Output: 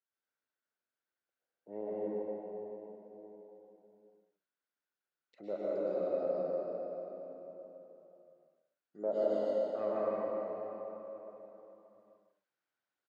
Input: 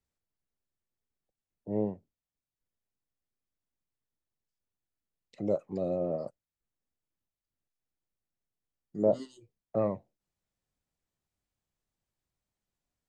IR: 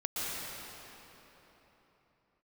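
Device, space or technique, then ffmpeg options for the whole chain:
station announcement: -filter_complex "[0:a]highpass=370,lowpass=4.4k,equalizer=f=1.5k:t=o:w=0.33:g=11,aecho=1:1:102|154.5:0.282|0.316[a];[1:a]atrim=start_sample=2205[b];[a][b]afir=irnorm=-1:irlink=0,volume=-6.5dB"

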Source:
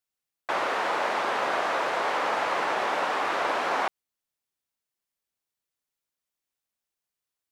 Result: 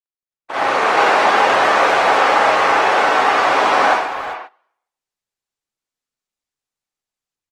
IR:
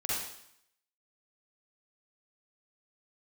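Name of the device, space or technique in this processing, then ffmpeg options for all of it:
speakerphone in a meeting room: -filter_complex "[0:a]lowpass=10k,asettb=1/sr,asplit=3[a][b][c];[a]atrim=end=0.554[d];[b]atrim=start=0.55:end=1.11,asetpts=PTS-STARTPTS,afade=t=in:d=0.004:c=qsin,afade=t=out:st=0.556:d=0.004:c=qsin,asplit=2[e][f];[f]adelay=43,volume=-11dB[g];[e][g]amix=inputs=2:normalize=0,atrim=end_sample=24696[h];[c]atrim=start=1.106[i];[d][h]acrossfade=d=0.004:c1=hsin:c2=qsin[j];[j][i]acrossfade=d=0.004:c1=qsin:c2=hsin[k];[1:a]atrim=start_sample=2205[l];[k][l]afir=irnorm=-1:irlink=0,asplit=2[m][n];[n]adelay=390,highpass=300,lowpass=3.4k,asoftclip=type=hard:threshold=-17dB,volume=-11dB[o];[m][o]amix=inputs=2:normalize=0,dynaudnorm=f=110:g=11:m=10.5dB,agate=range=-17dB:threshold=-32dB:ratio=16:detection=peak" -ar 48000 -c:a libopus -b:a 20k

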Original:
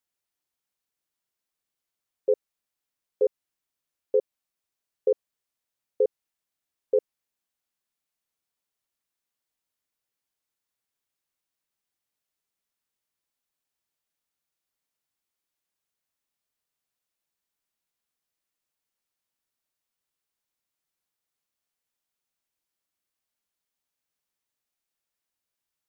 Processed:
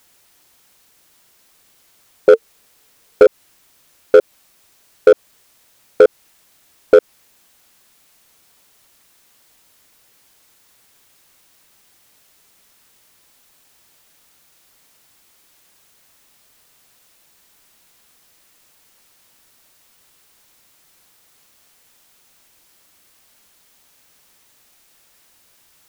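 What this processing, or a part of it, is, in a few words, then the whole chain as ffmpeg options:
loud club master: -filter_complex "[0:a]asettb=1/sr,asplit=3[a][b][c];[a]atrim=end=2.334[d];[b]atrim=start=2.33:end=3.23,asetpts=PTS-STARTPTS,afade=t=in:d=0.004:c=qsin,afade=t=out:st=0.896:d=0.004:c=qsin,equalizer=f=450:w=6:g=6.5[e];[c]atrim=start=3.226[f];[d][e]acrossfade=d=0.004:c1=hsin:c2=qsin[g];[g][f]acrossfade=d=0.004:c1=qsin:c2=hsin,acompressor=threshold=-23dB:ratio=2.5,asoftclip=type=hard:threshold=-21.5dB,alimiter=level_in=32dB:limit=-1dB:release=50:level=0:latency=1,volume=-1dB"

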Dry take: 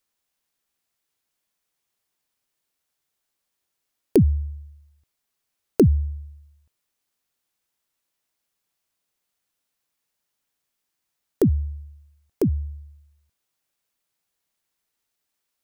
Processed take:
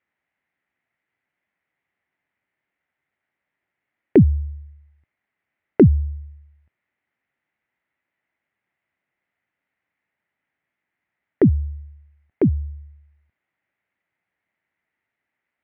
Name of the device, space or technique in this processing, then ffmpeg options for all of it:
bass cabinet: -af "highpass=77,equalizer=f=460:t=q:w=4:g=-5,equalizer=f=1.1k:t=q:w=4:g=-5,equalizer=f=2k:t=q:w=4:g=9,lowpass=f=2.3k:w=0.5412,lowpass=f=2.3k:w=1.3066,volume=5dB"

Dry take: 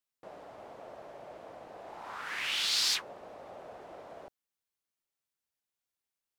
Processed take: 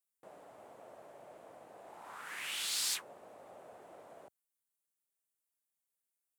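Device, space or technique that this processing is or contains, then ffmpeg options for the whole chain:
budget condenser microphone: -af "highpass=98,highshelf=f=6.7k:t=q:w=1.5:g=8.5,volume=-6.5dB"

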